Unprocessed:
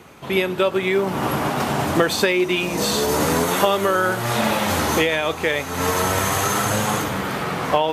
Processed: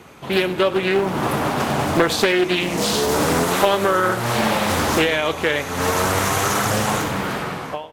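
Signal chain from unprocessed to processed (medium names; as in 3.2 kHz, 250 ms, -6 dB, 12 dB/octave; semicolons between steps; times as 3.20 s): fade out at the end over 0.62 s; frequency-shifting echo 97 ms, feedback 47%, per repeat -30 Hz, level -16.5 dB; loudspeaker Doppler distortion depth 0.47 ms; trim +1 dB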